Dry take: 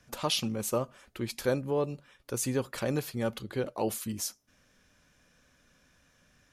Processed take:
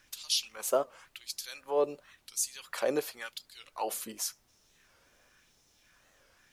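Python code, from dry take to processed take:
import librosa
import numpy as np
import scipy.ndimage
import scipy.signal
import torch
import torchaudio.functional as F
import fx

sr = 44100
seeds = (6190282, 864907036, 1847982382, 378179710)

y = fx.filter_lfo_highpass(x, sr, shape='sine', hz=0.93, low_hz=410.0, high_hz=5100.0, q=1.5)
y = fx.dmg_noise_colour(y, sr, seeds[0], colour='pink', level_db=-71.0)
y = fx.record_warp(y, sr, rpm=45.0, depth_cents=160.0)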